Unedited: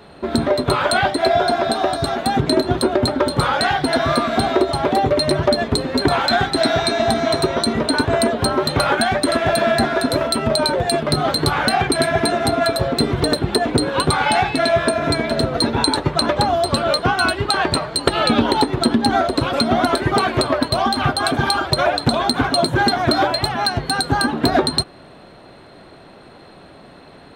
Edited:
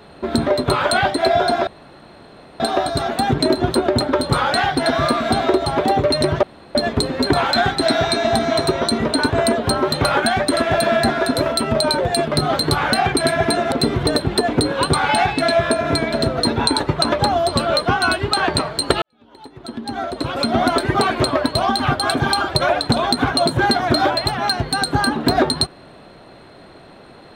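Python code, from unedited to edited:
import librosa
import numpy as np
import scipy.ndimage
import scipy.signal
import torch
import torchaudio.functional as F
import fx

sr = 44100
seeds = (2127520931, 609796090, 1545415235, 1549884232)

y = fx.edit(x, sr, fx.insert_room_tone(at_s=1.67, length_s=0.93),
    fx.insert_room_tone(at_s=5.5, length_s=0.32),
    fx.cut(start_s=12.47, length_s=0.42),
    fx.fade_in_span(start_s=18.19, length_s=1.6, curve='qua'), tone=tone)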